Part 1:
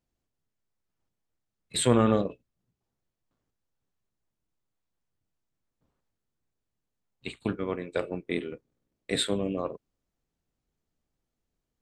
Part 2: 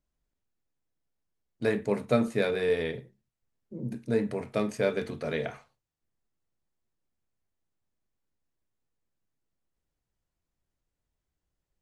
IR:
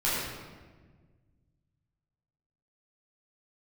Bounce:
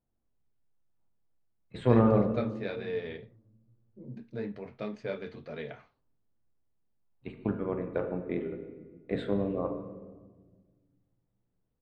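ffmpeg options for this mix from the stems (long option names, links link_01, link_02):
-filter_complex "[0:a]lowpass=1200,bandreject=frequency=47.38:width_type=h:width=4,bandreject=frequency=94.76:width_type=h:width=4,bandreject=frequency=142.14:width_type=h:width=4,bandreject=frequency=189.52:width_type=h:width=4,bandreject=frequency=236.9:width_type=h:width=4,bandreject=frequency=284.28:width_type=h:width=4,bandreject=frequency=331.66:width_type=h:width=4,bandreject=frequency=379.04:width_type=h:width=4,bandreject=frequency=426.42:width_type=h:width=4,bandreject=frequency=473.8:width_type=h:width=4,bandreject=frequency=521.18:width_type=h:width=4,bandreject=frequency=568.56:width_type=h:width=4,bandreject=frequency=615.94:width_type=h:width=4,bandreject=frequency=663.32:width_type=h:width=4,bandreject=frequency=710.7:width_type=h:width=4,bandreject=frequency=758.08:width_type=h:width=4,bandreject=frequency=805.46:width_type=h:width=4,bandreject=frequency=852.84:width_type=h:width=4,bandreject=frequency=900.22:width_type=h:width=4,bandreject=frequency=947.6:width_type=h:width=4,bandreject=frequency=994.98:width_type=h:width=4,bandreject=frequency=1042.36:width_type=h:width=4,bandreject=frequency=1089.74:width_type=h:width=4,bandreject=frequency=1137.12:width_type=h:width=4,bandreject=frequency=1184.5:width_type=h:width=4,bandreject=frequency=1231.88:width_type=h:width=4,bandreject=frequency=1279.26:width_type=h:width=4,bandreject=frequency=1326.64:width_type=h:width=4,bandreject=frequency=1374.02:width_type=h:width=4,bandreject=frequency=1421.4:width_type=h:width=4,bandreject=frequency=1468.78:width_type=h:width=4,bandreject=frequency=1516.16:width_type=h:width=4,bandreject=frequency=1563.54:width_type=h:width=4,bandreject=frequency=1610.92:width_type=h:width=4,bandreject=frequency=1658.3:width_type=h:width=4,bandreject=frequency=1705.68:width_type=h:width=4,bandreject=frequency=1753.06:width_type=h:width=4,volume=-1dB,asplit=2[link_01][link_02];[link_02]volume=-18dB[link_03];[1:a]lowpass=frequency=4700:width=0.5412,lowpass=frequency=4700:width=1.3066,flanger=delay=4.3:depth=7:regen=-38:speed=1.5:shape=sinusoidal,adelay=250,volume=-5dB[link_04];[2:a]atrim=start_sample=2205[link_05];[link_03][link_05]afir=irnorm=-1:irlink=0[link_06];[link_01][link_04][link_06]amix=inputs=3:normalize=0"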